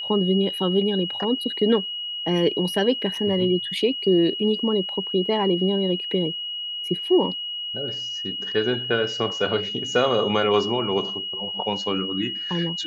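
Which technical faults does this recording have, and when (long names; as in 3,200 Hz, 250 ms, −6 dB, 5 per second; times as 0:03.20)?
whistle 2,900 Hz −28 dBFS
0:03.15: drop-out 3.9 ms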